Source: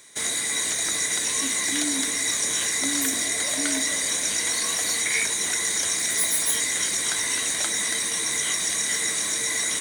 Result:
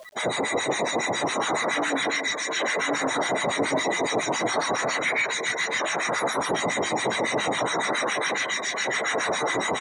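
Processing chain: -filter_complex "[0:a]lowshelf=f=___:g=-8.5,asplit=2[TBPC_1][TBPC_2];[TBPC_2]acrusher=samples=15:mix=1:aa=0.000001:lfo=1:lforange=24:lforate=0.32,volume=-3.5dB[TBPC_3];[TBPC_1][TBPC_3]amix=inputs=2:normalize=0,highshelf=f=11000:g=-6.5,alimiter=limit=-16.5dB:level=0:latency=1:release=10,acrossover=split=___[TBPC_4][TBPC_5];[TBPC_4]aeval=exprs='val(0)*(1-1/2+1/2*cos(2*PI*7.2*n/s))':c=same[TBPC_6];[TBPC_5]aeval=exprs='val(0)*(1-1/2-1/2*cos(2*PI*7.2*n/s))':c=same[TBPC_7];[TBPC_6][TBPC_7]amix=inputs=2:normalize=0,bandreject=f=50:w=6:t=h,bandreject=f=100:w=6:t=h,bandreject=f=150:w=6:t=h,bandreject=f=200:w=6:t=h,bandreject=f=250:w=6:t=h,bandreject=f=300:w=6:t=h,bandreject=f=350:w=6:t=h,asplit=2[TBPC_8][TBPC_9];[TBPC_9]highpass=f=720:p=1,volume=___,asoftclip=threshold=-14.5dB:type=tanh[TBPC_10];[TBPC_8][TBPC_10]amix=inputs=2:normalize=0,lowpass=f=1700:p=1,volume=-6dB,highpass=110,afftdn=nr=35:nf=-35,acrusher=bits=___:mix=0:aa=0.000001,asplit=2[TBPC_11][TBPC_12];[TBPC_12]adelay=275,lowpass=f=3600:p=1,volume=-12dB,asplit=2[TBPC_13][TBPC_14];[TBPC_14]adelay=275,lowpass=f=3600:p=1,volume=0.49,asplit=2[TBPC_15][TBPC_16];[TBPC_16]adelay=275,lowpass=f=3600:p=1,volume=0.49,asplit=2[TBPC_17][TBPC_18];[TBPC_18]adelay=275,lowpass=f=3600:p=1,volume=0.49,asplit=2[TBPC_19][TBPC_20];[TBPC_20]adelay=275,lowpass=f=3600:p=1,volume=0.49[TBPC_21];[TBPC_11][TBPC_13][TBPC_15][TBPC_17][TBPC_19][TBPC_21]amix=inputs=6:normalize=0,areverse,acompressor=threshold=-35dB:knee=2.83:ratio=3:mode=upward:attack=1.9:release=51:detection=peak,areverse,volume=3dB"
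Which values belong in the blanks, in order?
360, 1000, 20dB, 11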